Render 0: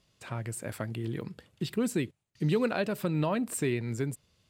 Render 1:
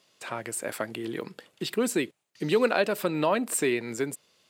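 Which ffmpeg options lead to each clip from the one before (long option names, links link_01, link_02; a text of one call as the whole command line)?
ffmpeg -i in.wav -af "highpass=340,volume=7dB" out.wav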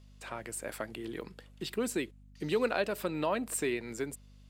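ffmpeg -i in.wav -af "aeval=exprs='val(0)+0.00398*(sin(2*PI*50*n/s)+sin(2*PI*2*50*n/s)/2+sin(2*PI*3*50*n/s)/3+sin(2*PI*4*50*n/s)/4+sin(2*PI*5*50*n/s)/5)':channel_layout=same,volume=-6.5dB" out.wav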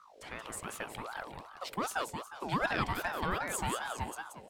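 ffmpeg -i in.wav -filter_complex "[0:a]asplit=2[link_01][link_02];[link_02]aecho=0:1:179|358|537|716|895:0.501|0.195|0.0762|0.0297|0.0116[link_03];[link_01][link_03]amix=inputs=2:normalize=0,aeval=exprs='val(0)*sin(2*PI*860*n/s+860*0.45/2.6*sin(2*PI*2.6*n/s))':channel_layout=same" out.wav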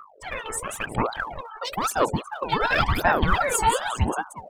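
ffmpeg -i in.wav -af "afftfilt=real='re*gte(hypot(re,im),0.00398)':imag='im*gte(hypot(re,im),0.00398)':win_size=1024:overlap=0.75,aphaser=in_gain=1:out_gain=1:delay=2.3:decay=0.78:speed=0.96:type=sinusoidal,volume=7.5dB" out.wav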